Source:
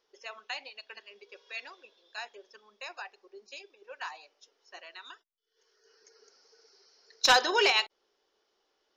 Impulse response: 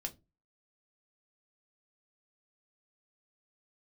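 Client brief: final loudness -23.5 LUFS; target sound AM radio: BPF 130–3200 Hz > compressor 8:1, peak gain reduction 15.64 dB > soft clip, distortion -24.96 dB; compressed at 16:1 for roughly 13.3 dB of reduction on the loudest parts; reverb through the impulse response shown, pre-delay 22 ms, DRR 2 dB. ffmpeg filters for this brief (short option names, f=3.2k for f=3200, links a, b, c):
-filter_complex "[0:a]acompressor=threshold=-31dB:ratio=16,asplit=2[a][b];[1:a]atrim=start_sample=2205,adelay=22[c];[b][c]afir=irnorm=-1:irlink=0,volume=-0.5dB[d];[a][d]amix=inputs=2:normalize=0,highpass=130,lowpass=3.2k,acompressor=threshold=-45dB:ratio=8,asoftclip=threshold=-35.5dB,volume=27dB"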